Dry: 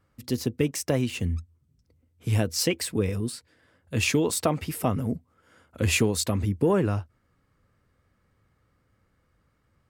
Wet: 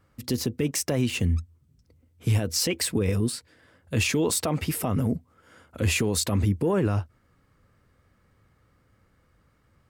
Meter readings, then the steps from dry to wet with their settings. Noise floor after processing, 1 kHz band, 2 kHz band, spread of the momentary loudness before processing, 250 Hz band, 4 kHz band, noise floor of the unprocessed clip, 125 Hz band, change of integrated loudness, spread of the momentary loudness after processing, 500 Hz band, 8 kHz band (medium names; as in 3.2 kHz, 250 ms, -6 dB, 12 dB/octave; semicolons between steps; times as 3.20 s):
-65 dBFS, -2.0 dB, -0.5 dB, 10 LU, +0.5 dB, +1.5 dB, -70 dBFS, +1.5 dB, +0.5 dB, 7 LU, -1.5 dB, +2.0 dB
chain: peak limiter -19.5 dBFS, peak gain reduction 10.5 dB; trim +4.5 dB